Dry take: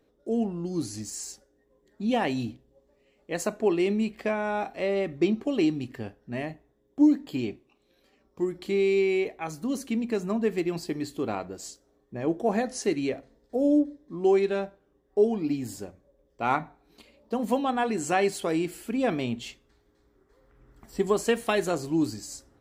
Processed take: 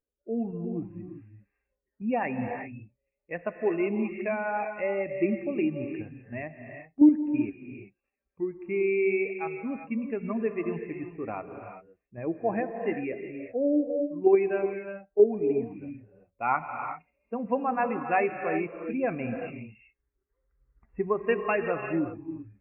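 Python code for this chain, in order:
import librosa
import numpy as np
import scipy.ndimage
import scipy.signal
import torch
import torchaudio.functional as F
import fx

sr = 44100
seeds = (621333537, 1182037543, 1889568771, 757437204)

p1 = fx.bin_expand(x, sr, power=1.5)
p2 = fx.low_shelf(p1, sr, hz=240.0, db=-7.5)
p3 = fx.level_steps(p2, sr, step_db=22)
p4 = p2 + (p3 * 10.0 ** (-0.5 / 20.0))
p5 = fx.brickwall_lowpass(p4, sr, high_hz=2800.0)
p6 = fx.rev_gated(p5, sr, seeds[0], gate_ms=410, shape='rising', drr_db=5.5)
y = p6 * 10.0 ** (1.0 / 20.0)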